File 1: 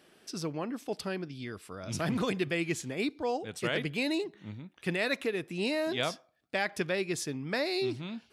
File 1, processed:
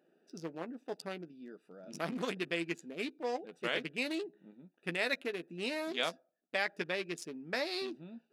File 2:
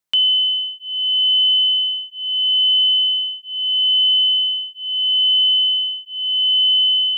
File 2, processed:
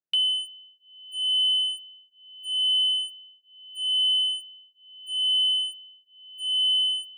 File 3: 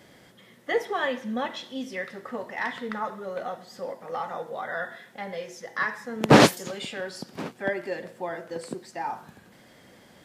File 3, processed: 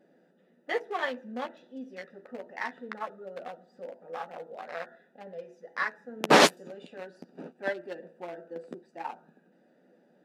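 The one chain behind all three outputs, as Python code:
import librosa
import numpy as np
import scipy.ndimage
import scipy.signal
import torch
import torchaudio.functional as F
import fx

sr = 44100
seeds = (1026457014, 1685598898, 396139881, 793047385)

y = fx.wiener(x, sr, points=41)
y = fx.brickwall_highpass(y, sr, low_hz=150.0)
y = fx.low_shelf(y, sr, hz=340.0, db=-12.0)
y = fx.doubler(y, sr, ms=12.0, db=-10)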